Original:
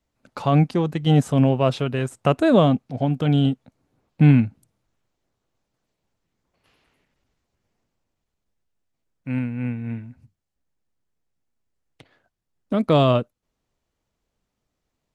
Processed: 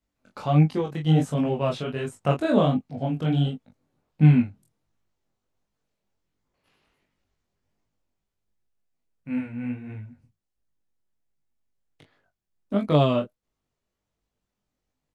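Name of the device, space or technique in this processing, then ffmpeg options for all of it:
double-tracked vocal: -filter_complex "[0:a]asplit=2[link_01][link_02];[link_02]adelay=20,volume=-4.5dB[link_03];[link_01][link_03]amix=inputs=2:normalize=0,flanger=delay=19:depth=6.4:speed=1.4,volume=-3dB"

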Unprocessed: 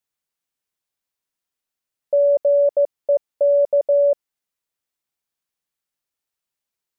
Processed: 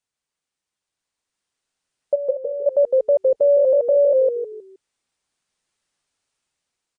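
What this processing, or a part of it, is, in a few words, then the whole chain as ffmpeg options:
low-bitrate web radio: -filter_complex "[0:a]asplit=3[link_01][link_02][link_03];[link_01]afade=type=out:start_time=2.14:duration=0.02[link_04];[link_02]agate=range=-19dB:threshold=-5dB:ratio=16:detection=peak,afade=type=in:start_time=2.14:duration=0.02,afade=type=out:start_time=2.66:duration=0.02[link_05];[link_03]afade=type=in:start_time=2.66:duration=0.02[link_06];[link_04][link_05][link_06]amix=inputs=3:normalize=0,asplit=5[link_07][link_08][link_09][link_10][link_11];[link_08]adelay=157,afreqshift=-47,volume=-7dB[link_12];[link_09]adelay=314,afreqshift=-94,volume=-17.2dB[link_13];[link_10]adelay=471,afreqshift=-141,volume=-27.3dB[link_14];[link_11]adelay=628,afreqshift=-188,volume=-37.5dB[link_15];[link_07][link_12][link_13][link_14][link_15]amix=inputs=5:normalize=0,dynaudnorm=framelen=260:gausssize=11:maxgain=9.5dB,alimiter=limit=-11.5dB:level=0:latency=1:release=32,volume=1.5dB" -ar 22050 -c:a libmp3lame -b:a 48k

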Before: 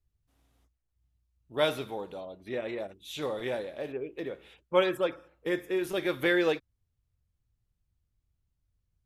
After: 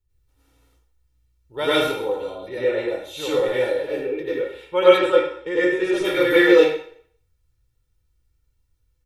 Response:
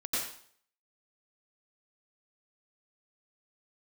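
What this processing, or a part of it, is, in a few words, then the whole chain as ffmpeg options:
microphone above a desk: -filter_complex "[0:a]aecho=1:1:2.2:0.71[link_01];[1:a]atrim=start_sample=2205[link_02];[link_01][link_02]afir=irnorm=-1:irlink=0,asettb=1/sr,asplit=3[link_03][link_04][link_05];[link_03]atrim=end=4.994[link_06];[link_04]atrim=start=4.99:end=6.05,asetpts=PTS-STARTPTS,afade=type=in:duration=0.004:curve=qsin,afade=type=out:start_time=1.056:duration=0.004:curve=qsin,lowpass=frequency=8200:width=0.5412,lowpass=frequency=8200:width=1.3066[link_07];[link_05]atrim=start=6.046[link_08];[link_06][link_07]acrossfade=duration=0.004:curve1=hsin:curve2=qsin[link_09];[link_09][link_08]acrossfade=duration=0.004:curve1=qsin:curve2=hsin,volume=3dB"

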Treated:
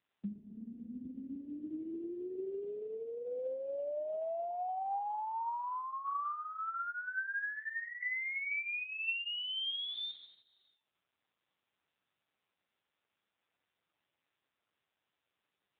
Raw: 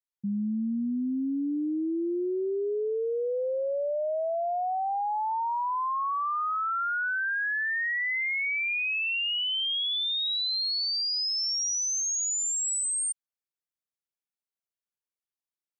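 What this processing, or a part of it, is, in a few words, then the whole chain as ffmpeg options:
voicemail: -af "highpass=430,lowpass=3000,acompressor=threshold=-39dB:ratio=8,volume=7.5dB" -ar 8000 -c:a libopencore_amrnb -b:a 5900

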